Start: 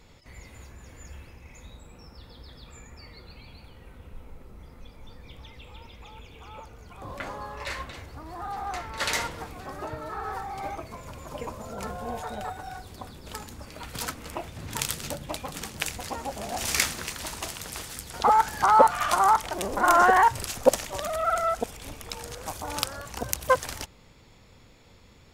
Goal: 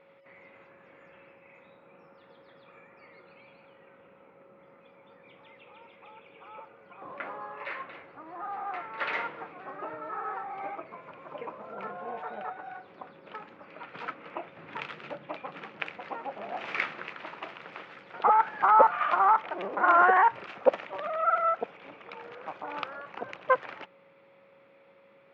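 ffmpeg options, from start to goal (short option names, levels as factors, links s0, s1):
-af "highpass=f=190:w=0.5412,highpass=f=190:w=1.3066,equalizer=f=240:t=q:w=4:g=-9,equalizer=f=1300:t=q:w=4:g=4,equalizer=f=2400:t=q:w=4:g=3,lowpass=f=2600:w=0.5412,lowpass=f=2600:w=1.3066,aeval=exprs='val(0)+0.00178*sin(2*PI*550*n/s)':c=same,volume=0.708"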